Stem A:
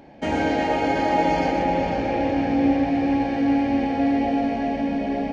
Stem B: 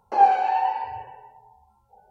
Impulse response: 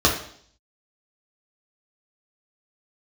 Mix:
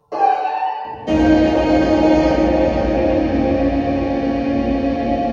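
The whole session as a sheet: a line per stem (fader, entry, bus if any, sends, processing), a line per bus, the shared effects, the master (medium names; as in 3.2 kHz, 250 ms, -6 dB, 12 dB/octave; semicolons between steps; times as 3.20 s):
-2.5 dB, 0.85 s, send -12.5 dB, none
-2.5 dB, 0.00 s, send -13.5 dB, comb 6.8 ms, depth 81%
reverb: on, RT60 0.60 s, pre-delay 3 ms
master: none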